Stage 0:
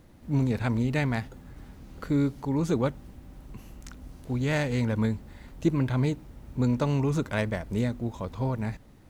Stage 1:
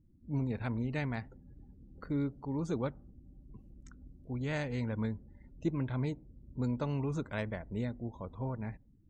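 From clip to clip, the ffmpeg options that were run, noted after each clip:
-af "afftdn=nr=28:nf=-47,volume=-8.5dB"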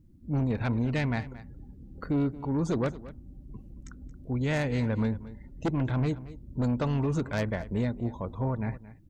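-af "aeval=exprs='0.0891*(cos(1*acos(clip(val(0)/0.0891,-1,1)))-cos(1*PI/2))+0.0398*(cos(5*acos(clip(val(0)/0.0891,-1,1)))-cos(5*PI/2))+0.0126*(cos(7*acos(clip(val(0)/0.0891,-1,1)))-cos(7*PI/2))':c=same,aecho=1:1:225:0.141,volume=1dB"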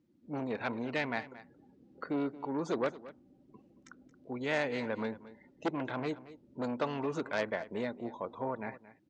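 -af "highpass=380,lowpass=5k"

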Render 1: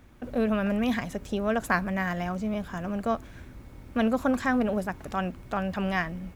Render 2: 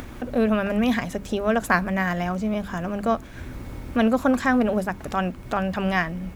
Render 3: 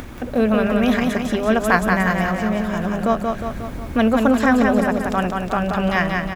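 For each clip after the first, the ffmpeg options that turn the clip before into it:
-af "bandreject=f=50:t=h:w=6,bandreject=f=100:t=h:w=6,bandreject=f=150:t=h:w=6,bandreject=f=200:t=h:w=6,acompressor=mode=upward:threshold=-31dB:ratio=2.5,volume=5dB"
-af "aecho=1:1:180|360|540|720|900|1080|1260|1440:0.631|0.353|0.198|0.111|0.0621|0.0347|0.0195|0.0109,volume=3dB"

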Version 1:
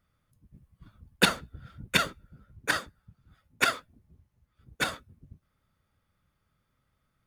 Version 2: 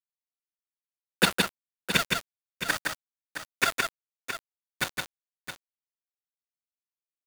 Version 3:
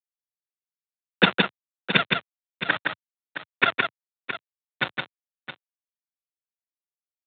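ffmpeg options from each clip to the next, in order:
-filter_complex "[0:a]aeval=exprs='val(0)*gte(abs(val(0)),0.0531)':c=same,asplit=2[a][b];[b]aecho=0:1:165|667:0.668|0.316[c];[a][c]amix=inputs=2:normalize=0"
-af "aresample=8000,aeval=exprs='sgn(val(0))*max(abs(val(0))-0.00794,0)':c=same,aresample=44100,highpass=f=110:w=0.5412,highpass=f=110:w=1.3066,volume=5.5dB"

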